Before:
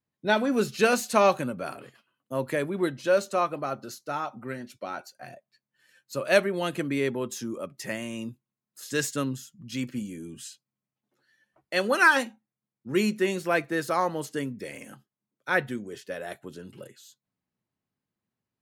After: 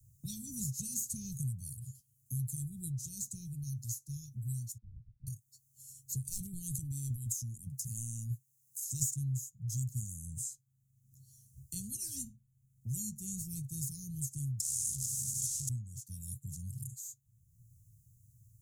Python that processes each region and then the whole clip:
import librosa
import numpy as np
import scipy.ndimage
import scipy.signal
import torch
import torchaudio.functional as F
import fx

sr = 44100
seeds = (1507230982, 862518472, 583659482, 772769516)

y = fx.chain(x, sr, fx.cvsd(bps=16000),
    fx.ladder_lowpass(hz=1200.0, resonance_pct=45), at=(4.78, 5.27))
y = fx.chain(y, sr, fx.highpass(hz=210.0, slope=6),
    fx.transient(attack_db=0, sustain_db=9),
    fx.clip_hard(threshold_db=-17.5), at=(6.27, 9.14))
y = fx.chain(y, sr, fx.clip_1bit(),
    fx.weighting(curve='ITU-R 468'), at=(14.6, 15.69))
y = scipy.signal.sosfilt(scipy.signal.cheby1(4, 1.0, [120.0, 6700.0], 'bandstop', fs=sr, output='sos'), y)
y = fx.high_shelf(y, sr, hz=2200.0, db=-9.0)
y = fx.band_squash(y, sr, depth_pct=70)
y = y * librosa.db_to_amplitude(12.5)